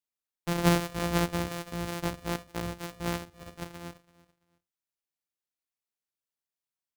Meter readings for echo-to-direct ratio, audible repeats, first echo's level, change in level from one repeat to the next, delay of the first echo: -19.5 dB, 2, -20.0 dB, -12.0 dB, 0.335 s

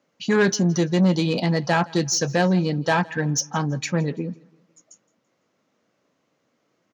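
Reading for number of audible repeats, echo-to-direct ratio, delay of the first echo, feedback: 2, -23.0 dB, 0.167 s, 41%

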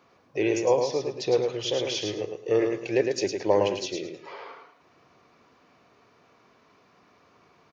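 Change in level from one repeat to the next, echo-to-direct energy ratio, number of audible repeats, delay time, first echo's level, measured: -13.0 dB, -5.0 dB, 3, 0.108 s, -5.0 dB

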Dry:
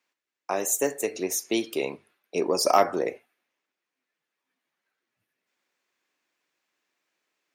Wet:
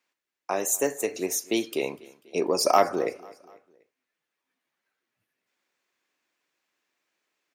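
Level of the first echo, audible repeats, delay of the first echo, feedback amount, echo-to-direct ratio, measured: -23.0 dB, 3, 0.246 s, 52%, -21.5 dB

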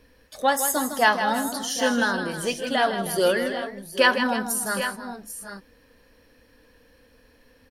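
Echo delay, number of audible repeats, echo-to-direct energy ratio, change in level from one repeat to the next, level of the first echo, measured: 0.158 s, 3, -6.0 dB, no steady repeat, -9.0 dB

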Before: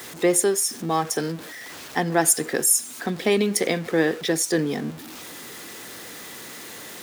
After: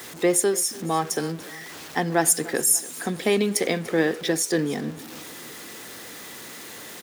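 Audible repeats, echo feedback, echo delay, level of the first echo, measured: 3, 50%, 0.292 s, -20.0 dB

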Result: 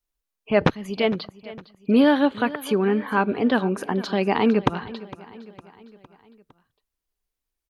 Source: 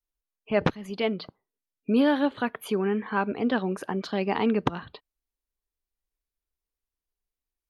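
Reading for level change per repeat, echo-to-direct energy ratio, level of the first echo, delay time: -5.5 dB, -16.5 dB, -18.0 dB, 0.458 s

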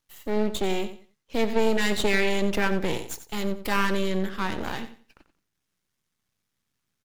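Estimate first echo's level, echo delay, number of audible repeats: -12.0 dB, 90 ms, 2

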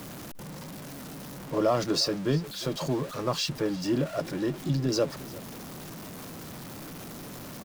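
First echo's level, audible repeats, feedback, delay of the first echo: -20.5 dB, 1, no steady repeat, 0.35 s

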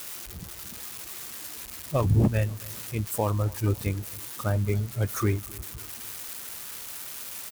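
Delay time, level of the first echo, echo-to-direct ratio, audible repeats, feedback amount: 0.267 s, -22.5 dB, -21.5 dB, 3, 51%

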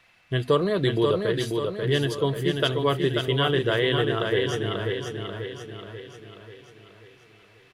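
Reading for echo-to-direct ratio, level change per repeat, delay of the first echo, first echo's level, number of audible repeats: -3.0 dB, -6.0 dB, 0.538 s, -4.5 dB, 6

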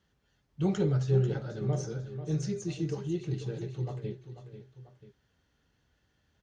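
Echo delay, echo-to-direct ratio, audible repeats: 0.491 s, -10.5 dB, 2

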